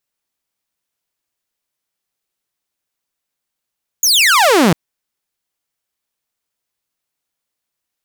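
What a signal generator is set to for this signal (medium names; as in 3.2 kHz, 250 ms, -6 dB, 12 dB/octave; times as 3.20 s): laser zap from 7 kHz, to 150 Hz, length 0.70 s saw, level -5.5 dB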